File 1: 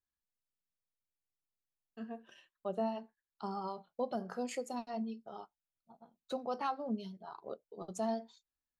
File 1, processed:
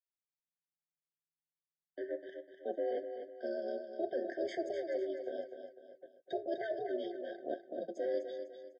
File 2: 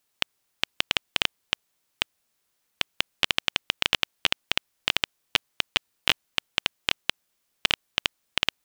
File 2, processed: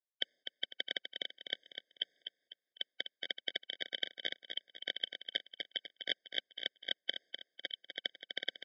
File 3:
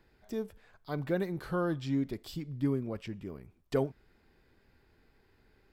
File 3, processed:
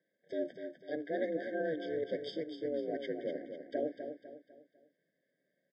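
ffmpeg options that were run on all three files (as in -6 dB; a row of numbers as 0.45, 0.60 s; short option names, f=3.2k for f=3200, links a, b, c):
-filter_complex "[0:a]agate=range=-20dB:threshold=-57dB:ratio=16:detection=peak,areverse,acompressor=threshold=-38dB:ratio=8,areverse,aeval=exprs='val(0)*sin(2*PI*160*n/s)':c=same,highpass=f=210:w=0.5412,highpass=f=210:w=1.3066,equalizer=f=220:t=q:w=4:g=-7,equalizer=f=540:t=q:w=4:g=6,equalizer=f=880:t=q:w=4:g=-7,equalizer=f=1.5k:t=q:w=4:g=7,lowpass=f=4.8k:w=0.5412,lowpass=f=4.8k:w=1.3066,asplit=2[a][b];[b]aecho=0:1:250|500|750|1000:0.398|0.155|0.0606|0.0236[c];[a][c]amix=inputs=2:normalize=0,afftfilt=real='re*eq(mod(floor(b*sr/1024/760),2),0)':imag='im*eq(mod(floor(b*sr/1024/760),2),0)':win_size=1024:overlap=0.75,volume=9dB"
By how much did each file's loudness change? +1.0, -13.0, -3.5 LU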